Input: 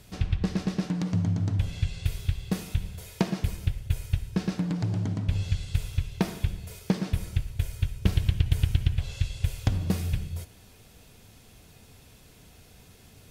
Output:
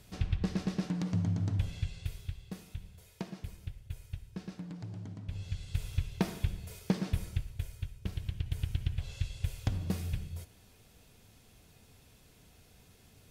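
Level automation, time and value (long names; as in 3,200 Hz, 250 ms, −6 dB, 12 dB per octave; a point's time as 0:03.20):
0:01.60 −5 dB
0:02.53 −14.5 dB
0:05.21 −14.5 dB
0:05.94 −4.5 dB
0:07.17 −4.5 dB
0:08.08 −14 dB
0:09.10 −7 dB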